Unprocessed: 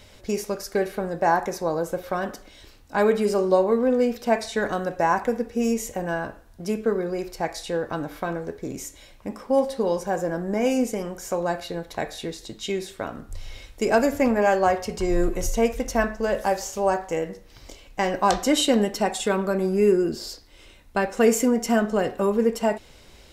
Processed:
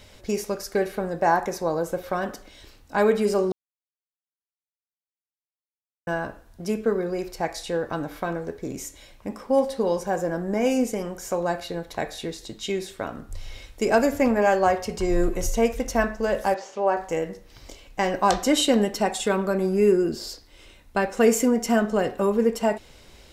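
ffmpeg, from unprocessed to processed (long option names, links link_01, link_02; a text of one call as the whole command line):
ffmpeg -i in.wav -filter_complex "[0:a]asettb=1/sr,asplit=3[link_01][link_02][link_03];[link_01]atrim=end=16.544[link_04];[link_02]atrim=start=16.54:end=16.97,asetpts=PTS-STARTPTS,afade=type=in:duration=0.004:curve=qsin,afade=type=out:start_time=0.426:duration=0.004:curve=qsin,highpass=270,lowpass=3100[link_05];[link_03]atrim=start=16.966[link_06];[link_04][link_05]acrossfade=duration=0.004:curve1=hsin:curve2=qsin[link_07];[link_07][link_06]acrossfade=duration=0.004:curve1=qsin:curve2=hsin,asplit=3[link_08][link_09][link_10];[link_08]atrim=end=3.52,asetpts=PTS-STARTPTS,afade=type=out:start_time=3.516:duration=0.004:curve=hsin[link_11];[link_09]atrim=start=3.52:end=6.07,asetpts=PTS-STARTPTS,volume=0[link_12];[link_10]atrim=start=6.07,asetpts=PTS-STARTPTS,afade=type=in:duration=0.004:curve=hsin[link_13];[link_11][link_12][link_13]concat=n=3:v=0:a=1" out.wav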